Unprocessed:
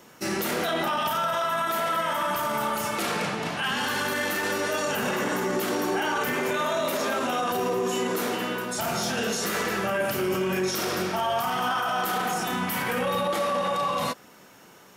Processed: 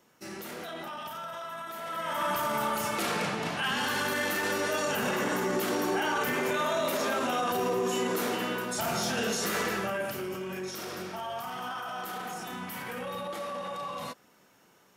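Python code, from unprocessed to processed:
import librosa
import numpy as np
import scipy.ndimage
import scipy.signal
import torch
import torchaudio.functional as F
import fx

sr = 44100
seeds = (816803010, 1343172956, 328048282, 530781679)

y = fx.gain(x, sr, db=fx.line((1.78, -13.0), (2.25, -2.5), (9.65, -2.5), (10.36, -10.5)))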